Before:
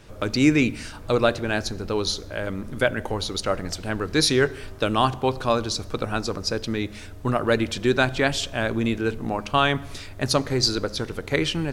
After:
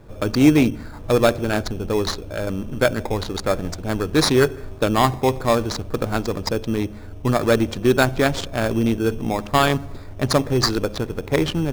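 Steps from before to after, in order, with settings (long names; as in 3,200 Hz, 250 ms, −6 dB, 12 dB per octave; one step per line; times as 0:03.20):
adaptive Wiener filter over 15 samples
in parallel at −3 dB: decimation without filtering 15×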